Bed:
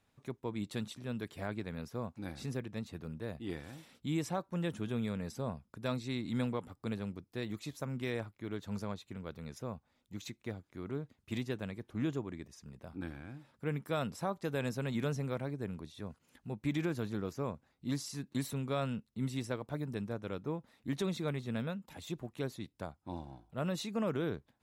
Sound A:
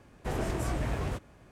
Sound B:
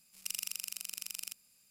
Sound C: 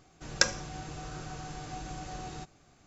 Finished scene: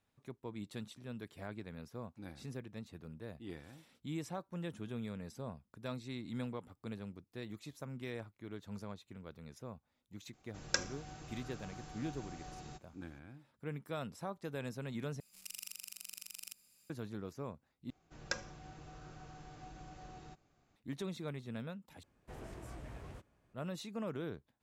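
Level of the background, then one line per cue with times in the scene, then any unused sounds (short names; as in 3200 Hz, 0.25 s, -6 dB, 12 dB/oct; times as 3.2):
bed -6.5 dB
10.33 add C -9 dB
15.2 replace with B -1.5 dB + limiter -26 dBFS
17.9 replace with C -11 dB + LPF 3400 Hz 6 dB/oct
22.03 replace with A -17 dB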